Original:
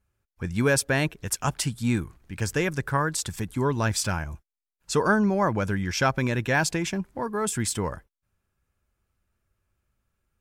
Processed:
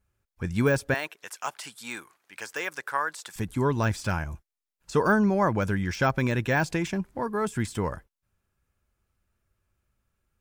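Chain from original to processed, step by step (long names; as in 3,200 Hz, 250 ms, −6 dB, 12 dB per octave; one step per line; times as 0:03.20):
de-essing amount 80%
0:00.94–0:03.36: high-pass filter 730 Hz 12 dB per octave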